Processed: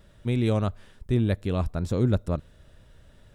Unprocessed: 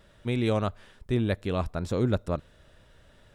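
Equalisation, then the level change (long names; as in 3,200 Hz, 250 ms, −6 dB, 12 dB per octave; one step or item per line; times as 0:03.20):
low-shelf EQ 310 Hz +8.5 dB
high-shelf EQ 6,200 Hz +6 dB
−3.0 dB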